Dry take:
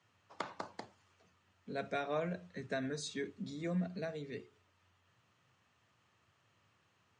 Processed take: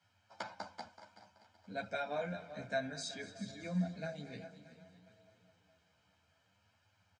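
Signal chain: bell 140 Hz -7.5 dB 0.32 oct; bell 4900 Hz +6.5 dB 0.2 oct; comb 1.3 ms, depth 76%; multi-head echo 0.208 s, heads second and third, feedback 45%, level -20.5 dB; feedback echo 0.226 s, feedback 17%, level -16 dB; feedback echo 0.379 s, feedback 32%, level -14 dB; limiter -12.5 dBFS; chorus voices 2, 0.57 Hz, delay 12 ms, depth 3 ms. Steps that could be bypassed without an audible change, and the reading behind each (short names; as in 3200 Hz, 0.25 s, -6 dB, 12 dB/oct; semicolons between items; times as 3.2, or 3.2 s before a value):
limiter -12.5 dBFS: input peak -20.5 dBFS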